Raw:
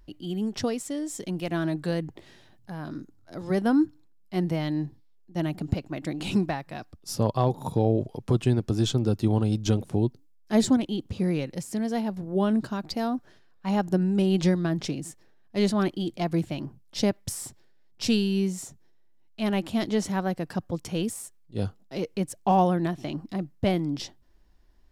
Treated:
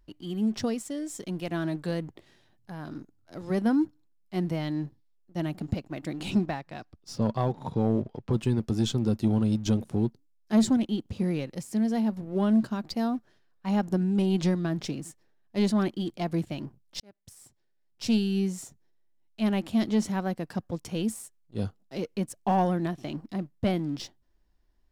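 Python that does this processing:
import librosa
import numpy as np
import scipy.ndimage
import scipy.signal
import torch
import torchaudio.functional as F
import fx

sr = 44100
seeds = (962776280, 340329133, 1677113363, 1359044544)

y = fx.lowpass(x, sr, hz=fx.line((6.3, 7300.0), (8.32, 3600.0)), slope=12, at=(6.3, 8.32), fade=0.02)
y = fx.edit(y, sr, fx.fade_in_span(start_s=17.0, length_s=1.39), tone=tone)
y = fx.dynamic_eq(y, sr, hz=220.0, q=7.5, threshold_db=-42.0, ratio=4.0, max_db=7)
y = fx.leveller(y, sr, passes=1)
y = y * librosa.db_to_amplitude(-6.5)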